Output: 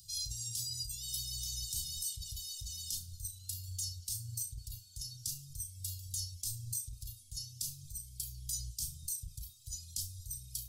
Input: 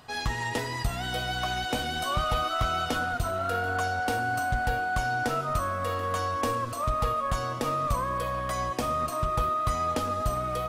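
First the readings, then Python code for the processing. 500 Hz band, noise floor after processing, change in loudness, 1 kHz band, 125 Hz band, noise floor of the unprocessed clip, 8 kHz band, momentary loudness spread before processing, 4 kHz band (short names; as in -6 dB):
under -40 dB, -57 dBFS, -11.0 dB, under -40 dB, -12.0 dB, -33 dBFS, +4.5 dB, 3 LU, -6.0 dB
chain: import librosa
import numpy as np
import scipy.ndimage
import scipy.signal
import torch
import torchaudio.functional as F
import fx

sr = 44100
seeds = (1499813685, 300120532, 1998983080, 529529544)

p1 = fx.dereverb_blind(x, sr, rt60_s=1.5)
p2 = scipy.signal.sosfilt(scipy.signal.cheby2(4, 60, [340.0, 1800.0], 'bandstop', fs=sr, output='sos'), p1)
p3 = fx.high_shelf(p2, sr, hz=2300.0, db=10.5)
p4 = fx.over_compress(p3, sr, threshold_db=-34.0, ratio=-1.0)
p5 = p4 + fx.room_flutter(p4, sr, wall_m=5.9, rt60_s=0.23, dry=0)
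y = F.gain(torch.from_numpy(p5), -4.5).numpy()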